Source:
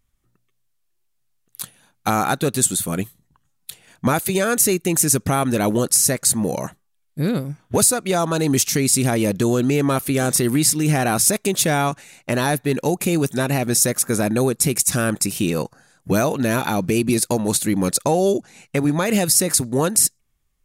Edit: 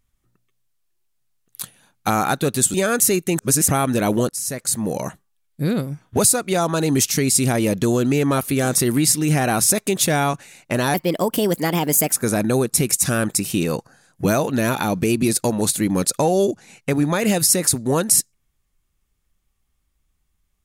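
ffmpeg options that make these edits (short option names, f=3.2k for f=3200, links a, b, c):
-filter_complex "[0:a]asplit=7[a][b][c][d][e][f][g];[a]atrim=end=2.742[h];[b]atrim=start=4.318:end=4.972[i];[c]atrim=start=4.968:end=5.262,asetpts=PTS-STARTPTS,areverse[j];[d]atrim=start=5.258:end=5.87,asetpts=PTS-STARTPTS,afade=t=out:st=0.608:d=0.004:c=hsin:silence=0.16788[k];[e]atrim=start=5.87:end=12.524,asetpts=PTS-STARTPTS,afade=t=in:d=0.77:silence=0.16788[l];[f]atrim=start=12.52:end=13.99,asetpts=PTS-STARTPTS,asetrate=54684,aresample=44100[m];[g]atrim=start=13.986[n];[h][i]acrossfade=d=0.004:c1=hsin:c2=hsin[o];[o][j]acrossfade=d=0.004:c1=hsin:c2=hsin[p];[k][l]concat=n=2:v=0:a=1[q];[p][q]acrossfade=d=0.004:c1=hsin:c2=hsin[r];[r][m]acrossfade=d=0.004:c1=hsin:c2=hsin[s];[s][n]acrossfade=d=0.004:c1=hsin:c2=hsin"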